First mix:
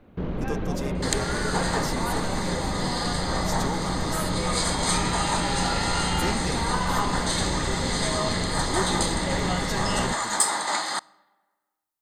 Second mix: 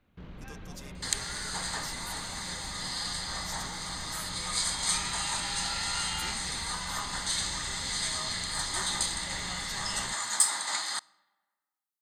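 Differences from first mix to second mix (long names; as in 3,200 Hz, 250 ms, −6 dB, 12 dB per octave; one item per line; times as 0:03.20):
second sound +4.5 dB
master: add guitar amp tone stack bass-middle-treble 5-5-5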